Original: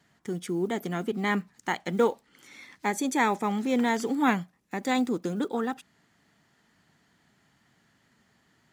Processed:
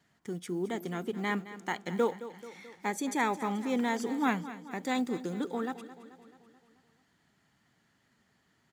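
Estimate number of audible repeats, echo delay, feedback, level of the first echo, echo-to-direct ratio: 5, 217 ms, 57%, -14.5 dB, -13.0 dB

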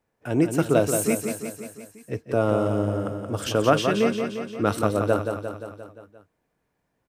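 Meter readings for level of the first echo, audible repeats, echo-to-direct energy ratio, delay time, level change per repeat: -6.5 dB, 6, -4.5 dB, 175 ms, -4.5 dB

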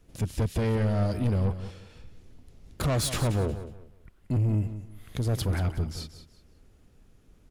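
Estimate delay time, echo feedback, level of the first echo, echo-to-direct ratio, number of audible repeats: 182 ms, 27%, -12.0 dB, -11.5 dB, 3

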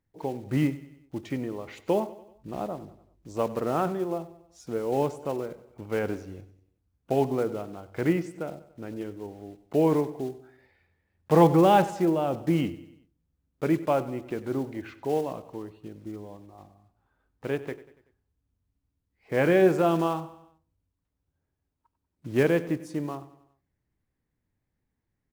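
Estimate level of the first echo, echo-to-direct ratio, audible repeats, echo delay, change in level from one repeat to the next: -17.0 dB, -15.5 dB, 4, 95 ms, -6.0 dB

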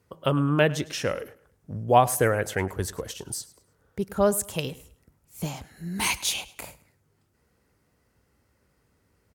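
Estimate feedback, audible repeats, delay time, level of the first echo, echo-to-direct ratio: 31%, 2, 105 ms, -19.5 dB, -19.0 dB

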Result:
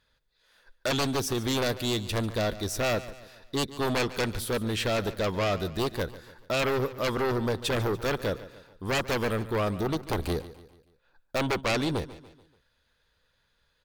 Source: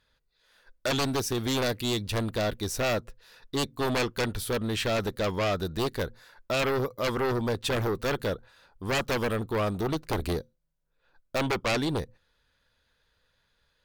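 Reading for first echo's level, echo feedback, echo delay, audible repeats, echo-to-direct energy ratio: -16.0 dB, 45%, 144 ms, 3, -15.0 dB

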